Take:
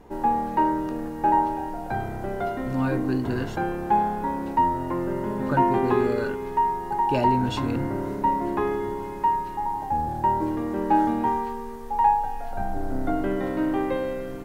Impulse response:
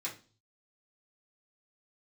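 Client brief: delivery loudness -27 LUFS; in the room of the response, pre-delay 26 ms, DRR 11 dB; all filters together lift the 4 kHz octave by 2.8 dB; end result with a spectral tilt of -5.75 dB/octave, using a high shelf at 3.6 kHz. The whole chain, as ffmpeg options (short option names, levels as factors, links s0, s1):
-filter_complex "[0:a]highshelf=f=3600:g=-3.5,equalizer=f=4000:t=o:g=6,asplit=2[s0][s1];[1:a]atrim=start_sample=2205,adelay=26[s2];[s1][s2]afir=irnorm=-1:irlink=0,volume=0.237[s3];[s0][s3]amix=inputs=2:normalize=0,volume=0.794"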